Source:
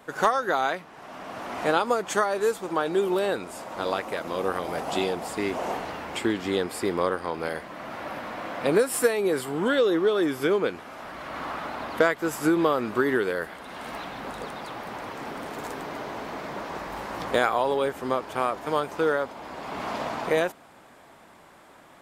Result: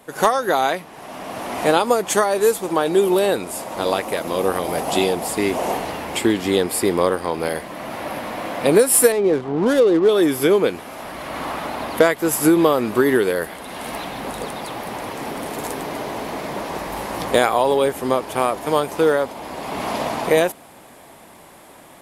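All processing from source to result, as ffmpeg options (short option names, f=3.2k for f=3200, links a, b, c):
-filter_complex "[0:a]asettb=1/sr,asplit=3[a][b][c];[a]atrim=end=9.124[d];[b]atrim=start=9.12:end=10.09,asetpts=PTS-STARTPTS,afade=t=in:d=0.004:c=qsin,afade=t=out:st=0.966:d=0.004:c=qsin,lowpass=f=1.5k:p=1,adynamicsmooth=sensitivity=7:basefreq=920[e];[c]atrim=start=10.086[f];[d][e]acrossfade=d=0.004:c1=hsin:c2=qsin[g];[g][f]acrossfade=d=0.004:c1=qsin:c2=hsin,equalizer=f=1.4k:w=2.1:g=-6,dynaudnorm=f=110:g=3:m=5dB,equalizer=f=11k:w=1.6:g=11.5,volume=3dB"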